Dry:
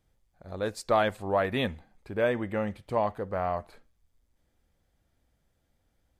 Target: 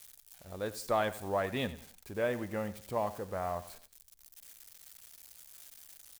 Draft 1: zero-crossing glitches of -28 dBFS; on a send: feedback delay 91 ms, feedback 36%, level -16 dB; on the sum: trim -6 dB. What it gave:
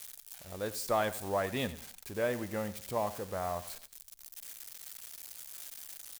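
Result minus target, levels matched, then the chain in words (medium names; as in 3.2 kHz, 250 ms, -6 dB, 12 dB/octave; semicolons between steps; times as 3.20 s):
zero-crossing glitches: distortion +7 dB
zero-crossing glitches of -35 dBFS; on a send: feedback delay 91 ms, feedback 36%, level -16 dB; on the sum: trim -6 dB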